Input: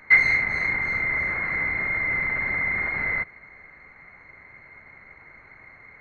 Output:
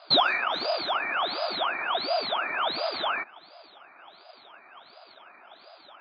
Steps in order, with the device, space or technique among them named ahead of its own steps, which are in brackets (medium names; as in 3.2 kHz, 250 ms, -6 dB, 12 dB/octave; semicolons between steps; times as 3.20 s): peaking EQ 2.9 kHz -6 dB 0.77 oct; voice changer toy (ring modulator with a swept carrier 1.5 kHz, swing 85%, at 1.4 Hz; cabinet simulation 470–4100 Hz, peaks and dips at 480 Hz -9 dB, 690 Hz +6 dB, 1.3 kHz +4 dB, 1.9 kHz -9 dB, 2.8 kHz -9 dB); trim +5 dB